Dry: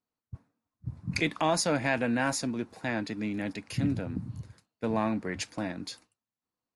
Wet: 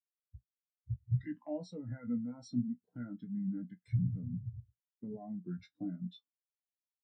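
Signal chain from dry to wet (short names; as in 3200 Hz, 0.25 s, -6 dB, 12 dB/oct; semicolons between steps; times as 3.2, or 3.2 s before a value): limiter -24 dBFS, peak gain reduction 9.5 dB; compressor 4:1, threshold -34 dBFS, peak gain reduction 6 dB; formant shift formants -3 st; resonator 63 Hz, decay 0.19 s, harmonics all, mix 90%; speed mistake 25 fps video run at 24 fps; spectral expander 2.5:1; gain +9 dB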